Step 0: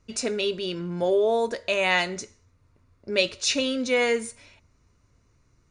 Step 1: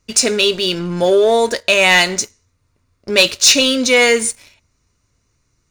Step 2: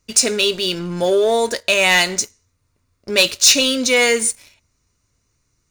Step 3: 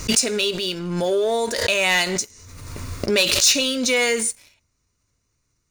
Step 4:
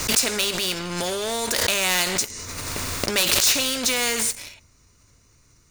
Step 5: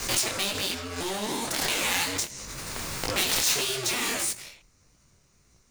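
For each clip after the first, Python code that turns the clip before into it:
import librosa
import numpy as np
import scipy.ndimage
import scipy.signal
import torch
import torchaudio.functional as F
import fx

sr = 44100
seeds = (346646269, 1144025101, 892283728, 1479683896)

y1 = fx.high_shelf(x, sr, hz=2700.0, db=10.5)
y1 = fx.leveller(y1, sr, passes=2)
y1 = y1 * librosa.db_to_amplitude(2.0)
y2 = fx.high_shelf(y1, sr, hz=7400.0, db=7.0)
y2 = y2 * librosa.db_to_amplitude(-3.5)
y3 = fx.pre_swell(y2, sr, db_per_s=37.0)
y3 = y3 * librosa.db_to_amplitude(-5.0)
y4 = fx.spectral_comp(y3, sr, ratio=2.0)
y5 = fx.cycle_switch(y4, sr, every=2, mode='inverted')
y5 = fx.detune_double(y5, sr, cents=56)
y5 = y5 * librosa.db_to_amplitude(-1.5)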